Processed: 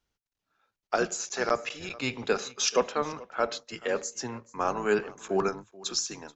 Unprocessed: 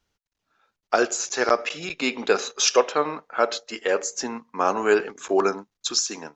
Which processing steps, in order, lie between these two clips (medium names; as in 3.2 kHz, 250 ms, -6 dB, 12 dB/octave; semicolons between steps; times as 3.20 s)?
octave divider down 1 oct, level -5 dB; delay 432 ms -21.5 dB; trim -6.5 dB